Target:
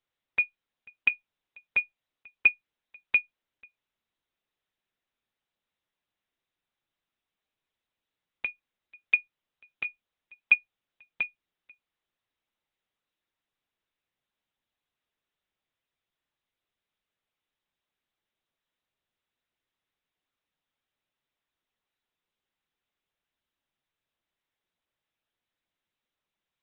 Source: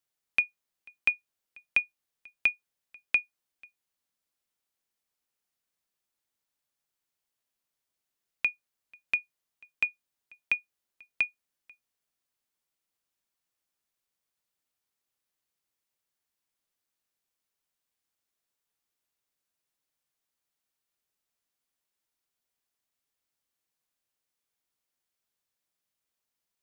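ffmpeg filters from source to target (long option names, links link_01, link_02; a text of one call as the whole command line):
ffmpeg -i in.wav -ar 48000 -c:a libopus -b:a 8k out.opus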